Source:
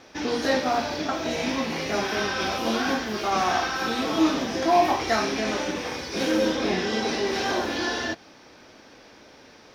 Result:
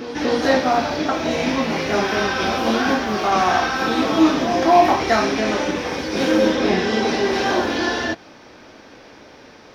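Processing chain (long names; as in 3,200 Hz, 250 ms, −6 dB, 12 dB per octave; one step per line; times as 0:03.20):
high-shelf EQ 3,900 Hz −6.5 dB
backwards echo 237 ms −11 dB
level +6.5 dB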